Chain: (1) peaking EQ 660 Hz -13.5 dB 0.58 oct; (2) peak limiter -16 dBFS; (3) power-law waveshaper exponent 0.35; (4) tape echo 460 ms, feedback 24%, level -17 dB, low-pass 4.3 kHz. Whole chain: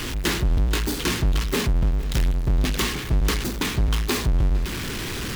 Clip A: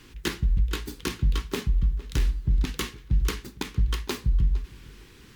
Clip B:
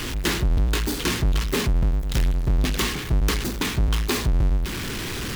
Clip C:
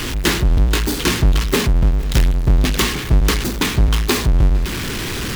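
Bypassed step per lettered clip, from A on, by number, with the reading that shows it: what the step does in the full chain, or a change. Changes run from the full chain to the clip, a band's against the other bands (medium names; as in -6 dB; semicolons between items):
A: 3, crest factor change +3.5 dB; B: 4, echo-to-direct -27.5 dB to none; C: 2, loudness change +6.5 LU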